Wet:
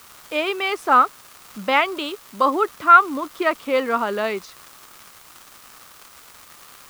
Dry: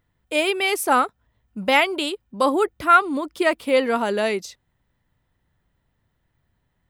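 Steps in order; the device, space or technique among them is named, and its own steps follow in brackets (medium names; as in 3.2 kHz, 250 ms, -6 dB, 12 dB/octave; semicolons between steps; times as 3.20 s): 78 rpm shellac record (band-pass 150–4800 Hz; crackle 310 per s -30 dBFS; white noise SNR 23 dB); peaking EQ 1.2 kHz +10 dB 0.53 oct; trim -2.5 dB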